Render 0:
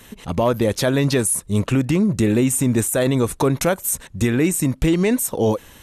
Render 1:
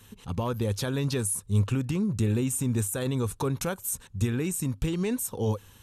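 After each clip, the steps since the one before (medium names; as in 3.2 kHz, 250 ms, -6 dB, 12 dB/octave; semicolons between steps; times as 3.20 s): graphic EQ with 31 bands 100 Hz +10 dB, 315 Hz -6 dB, 630 Hz -11 dB, 2 kHz -8 dB; trim -9 dB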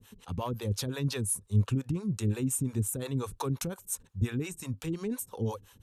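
harmonic tremolo 5.7 Hz, depth 100%, crossover 440 Hz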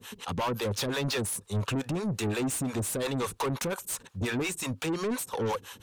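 overdrive pedal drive 30 dB, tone 5.2 kHz, clips at -14.5 dBFS; trim -6.5 dB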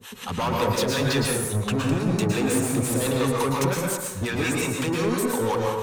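plate-style reverb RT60 1.1 s, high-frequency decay 0.45×, pre-delay 100 ms, DRR -2 dB; trim +3 dB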